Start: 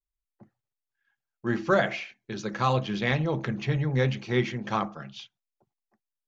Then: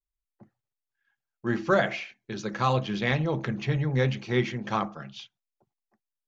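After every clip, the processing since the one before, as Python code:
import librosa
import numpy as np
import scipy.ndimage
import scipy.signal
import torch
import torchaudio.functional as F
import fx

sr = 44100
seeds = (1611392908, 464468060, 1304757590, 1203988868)

y = x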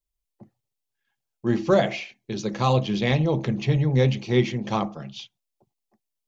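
y = fx.peak_eq(x, sr, hz=1500.0, db=-12.0, octaves=0.84)
y = y * 10.0 ** (5.5 / 20.0)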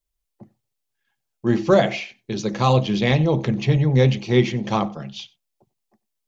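y = x + 10.0 ** (-24.0 / 20.0) * np.pad(x, (int(93 * sr / 1000.0), 0))[:len(x)]
y = y * 10.0 ** (3.5 / 20.0)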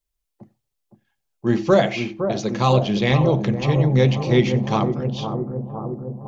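y = fx.echo_bbd(x, sr, ms=512, stages=4096, feedback_pct=70, wet_db=-8.0)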